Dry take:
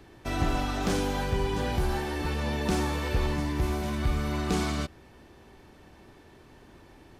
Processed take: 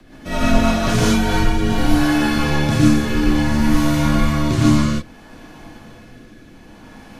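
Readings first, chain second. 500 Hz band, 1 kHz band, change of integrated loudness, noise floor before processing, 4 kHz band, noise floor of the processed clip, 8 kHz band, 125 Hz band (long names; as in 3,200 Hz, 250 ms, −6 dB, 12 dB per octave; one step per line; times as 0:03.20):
+8.0 dB, +9.5 dB, +12.0 dB, −54 dBFS, +11.0 dB, −43 dBFS, +11.5 dB, +11.5 dB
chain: rotating-speaker cabinet horn 5 Hz, later 0.6 Hz, at 0:00.74
frequency shifter −71 Hz
reverb whose tail is shaped and stops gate 170 ms rising, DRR −6.5 dB
level +7.5 dB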